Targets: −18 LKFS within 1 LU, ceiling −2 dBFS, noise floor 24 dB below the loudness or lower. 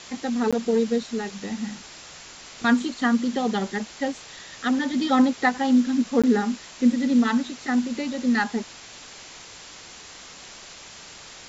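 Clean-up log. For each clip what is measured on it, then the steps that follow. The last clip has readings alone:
number of dropouts 2; longest dropout 16 ms; background noise floor −44 dBFS; target noise floor −48 dBFS; integrated loudness −23.5 LKFS; sample peak −8.0 dBFS; target loudness −18.0 LKFS
→ repair the gap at 0:00.51/0:06.22, 16 ms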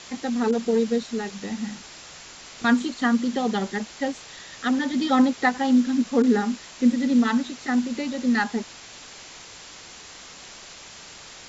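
number of dropouts 0; background noise floor −44 dBFS; target noise floor −48 dBFS
→ broadband denoise 6 dB, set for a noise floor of −44 dBFS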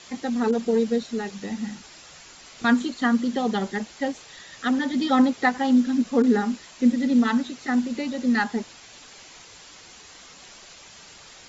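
background noise floor −47 dBFS; target noise floor −48 dBFS
→ broadband denoise 6 dB, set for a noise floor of −47 dBFS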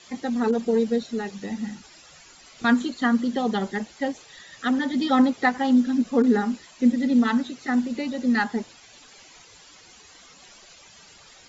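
background noise floor −51 dBFS; integrated loudness −23.5 LKFS; sample peak −8.0 dBFS; target loudness −18.0 LKFS
→ level +5.5 dB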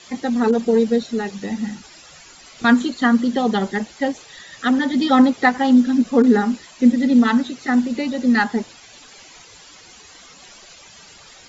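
integrated loudness −18.0 LKFS; sample peak −2.5 dBFS; background noise floor −45 dBFS

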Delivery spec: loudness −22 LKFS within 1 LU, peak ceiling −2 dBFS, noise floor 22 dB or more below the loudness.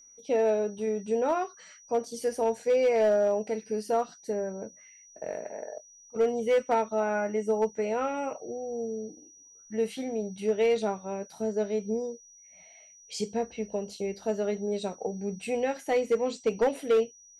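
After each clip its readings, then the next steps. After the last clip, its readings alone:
share of clipped samples 0.6%; peaks flattened at −18.5 dBFS; interfering tone 5,800 Hz; level of the tone −52 dBFS; integrated loudness −29.5 LKFS; sample peak −18.5 dBFS; target loudness −22.0 LKFS
→ clipped peaks rebuilt −18.5 dBFS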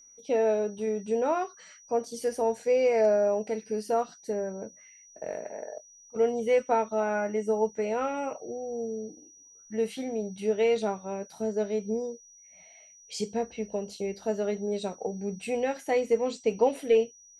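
share of clipped samples 0.0%; interfering tone 5,800 Hz; level of the tone −52 dBFS
→ notch filter 5,800 Hz, Q 30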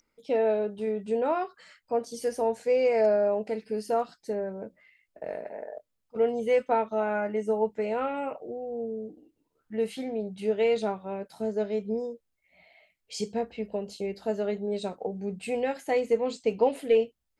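interfering tone none found; integrated loudness −29.0 LKFS; sample peak −11.5 dBFS; target loudness −22.0 LKFS
→ level +7 dB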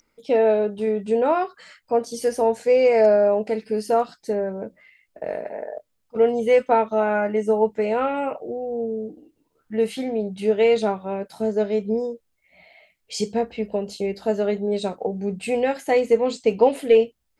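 integrated loudness −22.0 LKFS; sample peak −4.5 dBFS; background noise floor −71 dBFS

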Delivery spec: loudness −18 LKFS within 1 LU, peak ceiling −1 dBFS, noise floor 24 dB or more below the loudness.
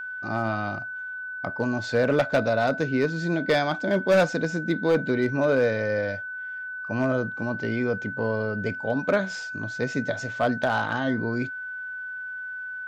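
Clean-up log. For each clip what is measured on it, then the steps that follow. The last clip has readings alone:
share of clipped samples 0.5%; peaks flattened at −14.5 dBFS; interfering tone 1,500 Hz; level of the tone −32 dBFS; integrated loudness −26.0 LKFS; sample peak −14.5 dBFS; target loudness −18.0 LKFS
→ clipped peaks rebuilt −14.5 dBFS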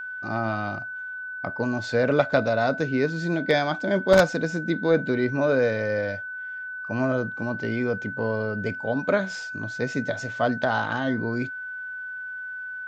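share of clipped samples 0.0%; interfering tone 1,500 Hz; level of the tone −32 dBFS
→ notch filter 1,500 Hz, Q 30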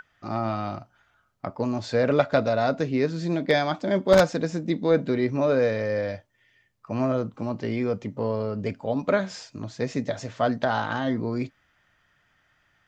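interfering tone none found; integrated loudness −25.5 LKFS; sample peak −5.0 dBFS; target loudness −18.0 LKFS
→ level +7.5 dB
brickwall limiter −1 dBFS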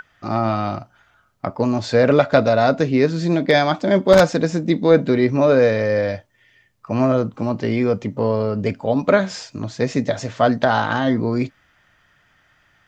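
integrated loudness −18.5 LKFS; sample peak −1.0 dBFS; background noise floor −60 dBFS

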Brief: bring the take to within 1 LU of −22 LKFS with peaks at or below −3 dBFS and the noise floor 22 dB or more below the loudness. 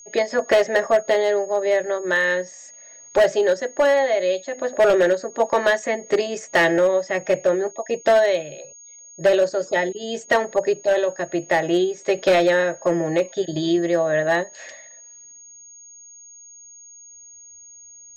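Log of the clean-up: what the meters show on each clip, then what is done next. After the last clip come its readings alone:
share of clipped samples 1.1%; peaks flattened at −11.0 dBFS; interfering tone 6,600 Hz; level of the tone −42 dBFS; integrated loudness −20.5 LKFS; sample peak −11.0 dBFS; target loudness −22.0 LKFS
→ clipped peaks rebuilt −11 dBFS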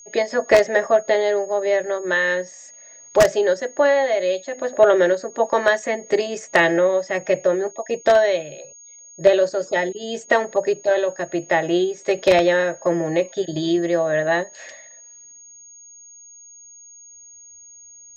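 share of clipped samples 0.0%; interfering tone 6,600 Hz; level of the tone −42 dBFS
→ notch filter 6,600 Hz, Q 30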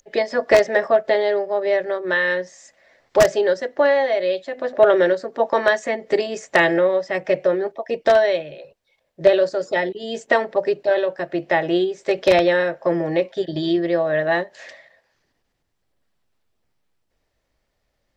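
interfering tone none found; integrated loudness −19.5 LKFS; sample peak −2.0 dBFS; target loudness −22.0 LKFS
→ level −2.5 dB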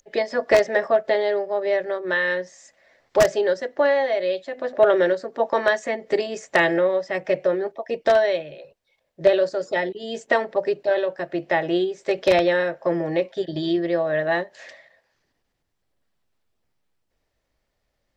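integrated loudness −22.0 LKFS; sample peak −4.5 dBFS; background noise floor −75 dBFS

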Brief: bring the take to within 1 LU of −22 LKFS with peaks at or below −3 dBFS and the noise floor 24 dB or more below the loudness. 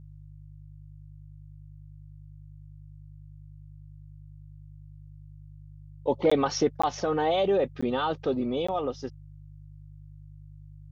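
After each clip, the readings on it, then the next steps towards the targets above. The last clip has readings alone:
number of dropouts 4; longest dropout 15 ms; mains hum 50 Hz; hum harmonics up to 150 Hz; level of the hum −45 dBFS; integrated loudness −27.5 LKFS; sample peak −12.5 dBFS; target loudness −22.0 LKFS
→ repair the gap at 0:06.30/0:06.82/0:07.81/0:08.67, 15 ms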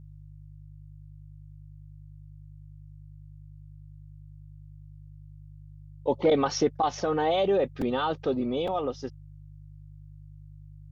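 number of dropouts 0; mains hum 50 Hz; hum harmonics up to 150 Hz; level of the hum −45 dBFS
→ hum removal 50 Hz, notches 3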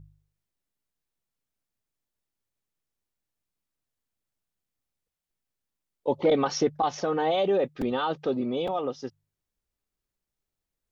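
mains hum none found; integrated loudness −27.0 LKFS; sample peak −12.5 dBFS; target loudness −22.0 LKFS
→ level +5 dB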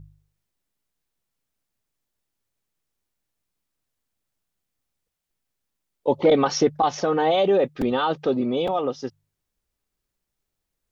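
integrated loudness −22.0 LKFS; sample peak −7.5 dBFS; background noise floor −82 dBFS

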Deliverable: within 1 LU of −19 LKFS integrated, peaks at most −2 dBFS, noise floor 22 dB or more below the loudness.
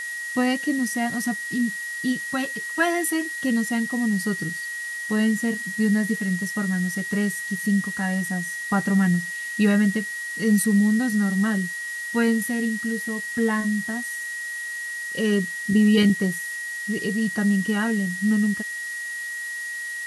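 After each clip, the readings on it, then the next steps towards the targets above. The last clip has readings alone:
interfering tone 1,900 Hz; level of the tone −29 dBFS; background noise floor −32 dBFS; target noise floor −46 dBFS; integrated loudness −24.0 LKFS; sample peak −7.5 dBFS; target loudness −19.0 LKFS
→ notch filter 1,900 Hz, Q 30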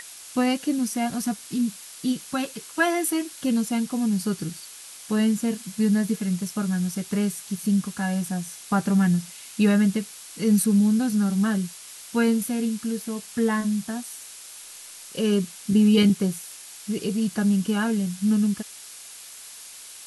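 interfering tone none found; background noise floor −43 dBFS; target noise floor −47 dBFS
→ broadband denoise 6 dB, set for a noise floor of −43 dBFS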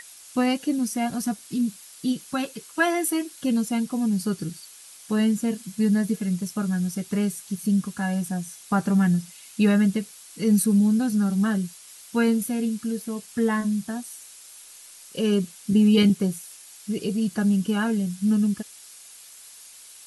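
background noise floor −47 dBFS; integrated loudness −24.5 LKFS; sample peak −8.0 dBFS; target loudness −19.0 LKFS
→ level +5.5 dB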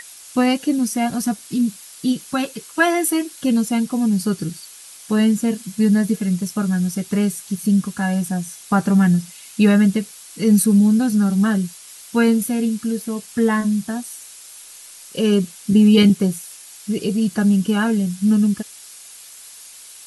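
integrated loudness −19.0 LKFS; sample peak −2.5 dBFS; background noise floor −41 dBFS

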